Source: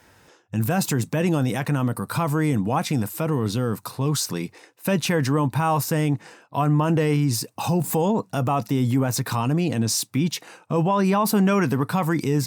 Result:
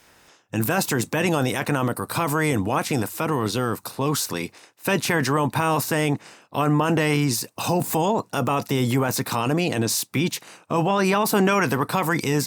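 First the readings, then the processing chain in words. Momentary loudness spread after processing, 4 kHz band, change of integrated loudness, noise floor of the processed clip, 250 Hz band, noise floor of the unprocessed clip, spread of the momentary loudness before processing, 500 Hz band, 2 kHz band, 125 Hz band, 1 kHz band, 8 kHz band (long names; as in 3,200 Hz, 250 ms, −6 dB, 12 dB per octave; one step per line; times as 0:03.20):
7 LU, +2.5 dB, 0.0 dB, −56 dBFS, −1.5 dB, −57 dBFS, 7 LU, +1.5 dB, +5.5 dB, −3.0 dB, +2.0 dB, +1.5 dB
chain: ceiling on every frequency bin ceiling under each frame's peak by 13 dB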